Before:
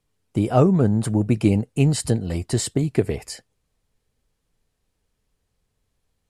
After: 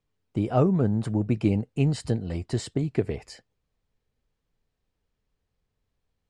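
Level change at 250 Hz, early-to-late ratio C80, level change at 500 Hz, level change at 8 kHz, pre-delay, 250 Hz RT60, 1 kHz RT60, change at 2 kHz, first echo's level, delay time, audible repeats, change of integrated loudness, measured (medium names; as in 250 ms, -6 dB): -5.0 dB, no reverb, -5.0 dB, -14.0 dB, no reverb, no reverb, no reverb, -6.0 dB, no echo, no echo, no echo, -5.5 dB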